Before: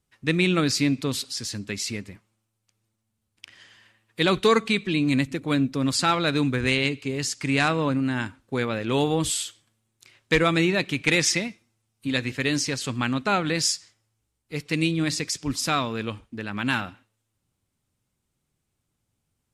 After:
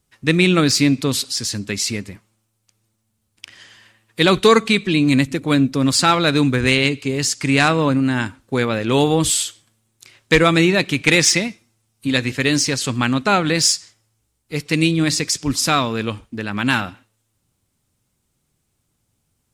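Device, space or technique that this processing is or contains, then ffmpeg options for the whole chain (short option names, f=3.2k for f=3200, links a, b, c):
exciter from parts: -filter_complex "[0:a]asplit=2[a][b];[b]highpass=3.6k,asoftclip=type=tanh:threshold=-27dB,volume=-7.5dB[c];[a][c]amix=inputs=2:normalize=0,volume=7dB"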